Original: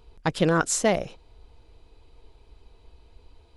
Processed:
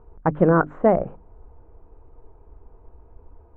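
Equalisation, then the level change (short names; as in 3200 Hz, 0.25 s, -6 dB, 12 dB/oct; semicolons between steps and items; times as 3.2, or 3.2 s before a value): inverse Chebyshev low-pass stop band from 4500 Hz, stop band 60 dB; notches 50/100/150/200/250/300 Hz; +5.5 dB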